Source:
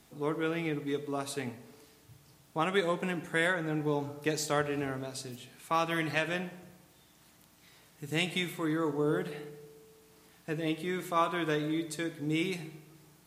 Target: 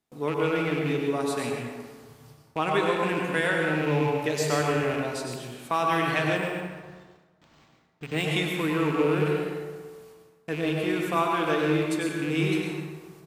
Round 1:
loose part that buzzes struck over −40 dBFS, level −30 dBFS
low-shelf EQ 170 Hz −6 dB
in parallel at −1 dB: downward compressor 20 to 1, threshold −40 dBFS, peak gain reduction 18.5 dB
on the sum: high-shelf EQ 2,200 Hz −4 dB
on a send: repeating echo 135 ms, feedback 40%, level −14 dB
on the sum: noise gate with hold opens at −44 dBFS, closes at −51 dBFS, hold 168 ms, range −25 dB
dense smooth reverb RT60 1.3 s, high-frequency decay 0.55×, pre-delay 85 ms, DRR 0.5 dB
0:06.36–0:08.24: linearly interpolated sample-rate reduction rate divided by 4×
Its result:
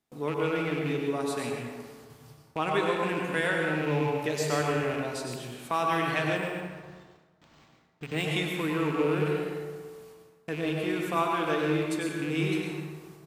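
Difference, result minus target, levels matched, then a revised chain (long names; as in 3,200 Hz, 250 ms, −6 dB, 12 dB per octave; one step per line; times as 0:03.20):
downward compressor: peak gain reduction +11 dB
loose part that buzzes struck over −40 dBFS, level −30 dBFS
low-shelf EQ 170 Hz −6 dB
in parallel at −1 dB: downward compressor 20 to 1, threshold −28.5 dBFS, peak gain reduction 7.5 dB
on the sum: high-shelf EQ 2,200 Hz −4 dB
on a send: repeating echo 135 ms, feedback 40%, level −14 dB
on the sum: noise gate with hold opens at −44 dBFS, closes at −51 dBFS, hold 168 ms, range −25 dB
dense smooth reverb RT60 1.3 s, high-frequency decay 0.55×, pre-delay 85 ms, DRR 0.5 dB
0:06.36–0:08.24: linearly interpolated sample-rate reduction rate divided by 4×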